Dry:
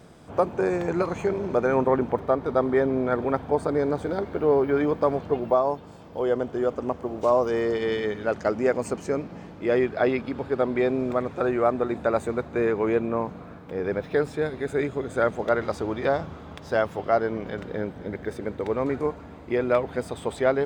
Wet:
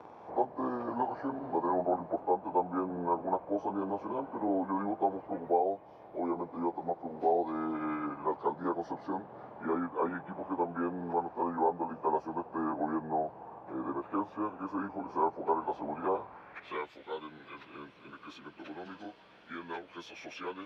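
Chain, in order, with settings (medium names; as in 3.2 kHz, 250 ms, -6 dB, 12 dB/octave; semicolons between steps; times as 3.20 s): frequency-domain pitch shifter -6.5 st; band-pass sweep 830 Hz -> 3.5 kHz, 16.14–16.95 s; three bands compressed up and down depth 40%; trim +4 dB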